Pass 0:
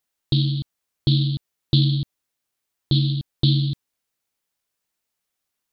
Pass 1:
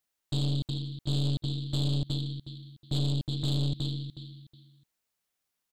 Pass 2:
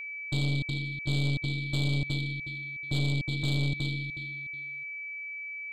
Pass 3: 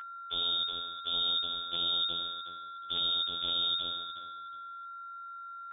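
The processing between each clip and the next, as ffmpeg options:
ffmpeg -i in.wav -filter_complex "[0:a]asplit=2[link_01][link_02];[link_02]aecho=0:1:367|734|1101:0.282|0.0705|0.0176[link_03];[link_01][link_03]amix=inputs=2:normalize=0,alimiter=limit=-16dB:level=0:latency=1:release=17,aeval=exprs='(tanh(17.8*val(0)+0.6)-tanh(0.6))/17.8':channel_layout=same" out.wav
ffmpeg -i in.wav -af "aeval=exprs='val(0)+0.0158*sin(2*PI*2300*n/s)':channel_layout=same" out.wav
ffmpeg -i in.wav -af "afftfilt=real='hypot(re,im)*cos(PI*b)':imag='0':win_size=2048:overlap=0.75,aeval=exprs='0.158*(cos(1*acos(clip(val(0)/0.158,-1,1)))-cos(1*PI/2))+0.0224*(cos(2*acos(clip(val(0)/0.158,-1,1)))-cos(2*PI/2))+0.00708*(cos(3*acos(clip(val(0)/0.158,-1,1)))-cos(3*PI/2))+0.02*(cos(4*acos(clip(val(0)/0.158,-1,1)))-cos(4*PI/2))+0.0126*(cos(6*acos(clip(val(0)/0.158,-1,1)))-cos(6*PI/2))':channel_layout=same,lowpass=frequency=3100:width_type=q:width=0.5098,lowpass=frequency=3100:width_type=q:width=0.6013,lowpass=frequency=3100:width_type=q:width=0.9,lowpass=frequency=3100:width_type=q:width=2.563,afreqshift=-3700,volume=4dB" out.wav

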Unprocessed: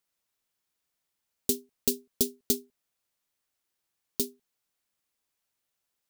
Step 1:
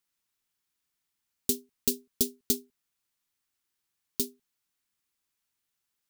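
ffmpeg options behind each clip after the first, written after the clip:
ffmpeg -i in.wav -af "equalizer=frequency=590:width=1.8:gain=-8.5" out.wav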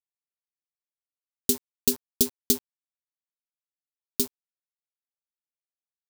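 ffmpeg -i in.wav -af "aeval=exprs='val(0)*gte(abs(val(0)),0.0106)':channel_layout=same,volume=4.5dB" out.wav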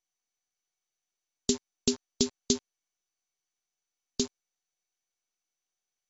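ffmpeg -i in.wav -ar 24000 -c:a mp2 -b:a 96k out.mp2

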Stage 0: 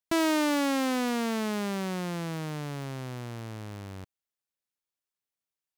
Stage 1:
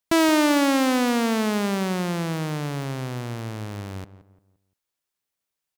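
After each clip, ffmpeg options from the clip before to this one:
ffmpeg -i in.wav -filter_complex "[0:a]asplit=2[link_01][link_02];[link_02]adelay=173,lowpass=frequency=1500:poles=1,volume=-14dB,asplit=2[link_03][link_04];[link_04]adelay=173,lowpass=frequency=1500:poles=1,volume=0.37,asplit=2[link_05][link_06];[link_06]adelay=173,lowpass=frequency=1500:poles=1,volume=0.37,asplit=2[link_07][link_08];[link_08]adelay=173,lowpass=frequency=1500:poles=1,volume=0.37[link_09];[link_01][link_03][link_05][link_07][link_09]amix=inputs=5:normalize=0,volume=7dB" out.wav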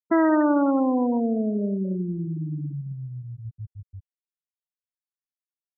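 ffmpeg -i in.wav -af "afftfilt=real='re*gte(hypot(re,im),0.224)':imag='im*gte(hypot(re,im),0.224)':win_size=1024:overlap=0.75" out.wav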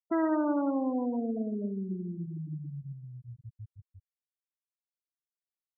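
ffmpeg -i in.wav -af "aecho=1:1:117|234|351|468|585:0.237|0.126|0.0666|0.0353|0.0187,afftfilt=real='re*gte(hypot(re,im),0.158)':imag='im*gte(hypot(re,im),0.158)':win_size=1024:overlap=0.75,volume=-8.5dB" out.wav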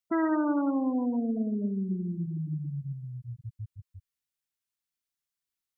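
ffmpeg -i in.wav -af "equalizer=frequency=570:width=0.71:gain=-9,volume=6.5dB" out.wav

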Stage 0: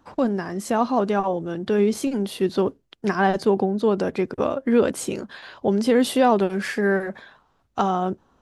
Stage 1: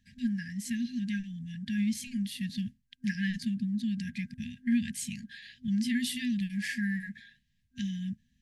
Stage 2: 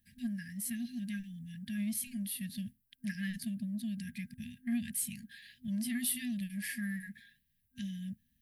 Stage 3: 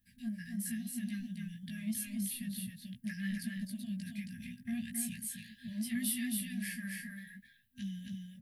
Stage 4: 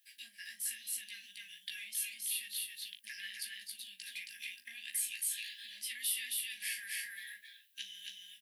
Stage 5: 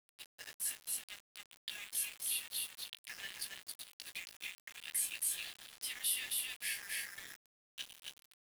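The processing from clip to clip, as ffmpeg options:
ffmpeg -i in.wav -af "afftfilt=real='re*(1-between(b*sr/4096,250,1600))':imag='im*(1-between(b*sr/4096,250,1600))':win_size=4096:overlap=0.75,volume=-5.5dB" out.wav
ffmpeg -i in.wav -filter_complex "[0:a]aexciter=amount=7:drive=7.1:freq=9400,asplit=2[link_01][link_02];[link_02]asoftclip=type=tanh:threshold=-27.5dB,volume=-8dB[link_03];[link_01][link_03]amix=inputs=2:normalize=0,volume=-8.5dB" out.wav
ffmpeg -i in.wav -af "flanger=delay=15.5:depth=3.1:speed=1.8,aecho=1:1:271:0.668,volume=1dB" out.wav
ffmpeg -i in.wav -filter_complex "[0:a]acompressor=threshold=-43dB:ratio=3,highpass=frequency=2700:width_type=q:width=1.6,asplit=2[link_01][link_02];[link_02]adelay=40,volume=-12dB[link_03];[link_01][link_03]amix=inputs=2:normalize=0,volume=9.5dB" out.wav
ffmpeg -i in.wav -af "aeval=exprs='val(0)*gte(abs(val(0)),0.00631)':channel_layout=same" out.wav

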